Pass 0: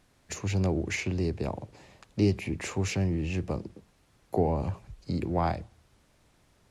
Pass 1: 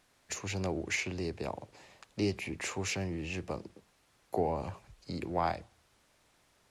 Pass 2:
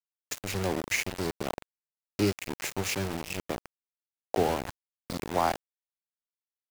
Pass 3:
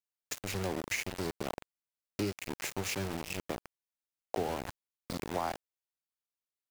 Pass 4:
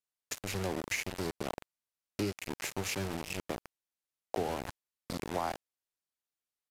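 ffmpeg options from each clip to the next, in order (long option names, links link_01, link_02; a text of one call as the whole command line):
ffmpeg -i in.wav -af "lowshelf=frequency=340:gain=-11.5" out.wav
ffmpeg -i in.wav -af "aeval=exprs='val(0)*gte(abs(val(0)),0.0211)':channel_layout=same,volume=5dB" out.wav
ffmpeg -i in.wav -af "acompressor=threshold=-28dB:ratio=3,volume=-2.5dB" out.wav
ffmpeg -i in.wav -af "aresample=32000,aresample=44100" out.wav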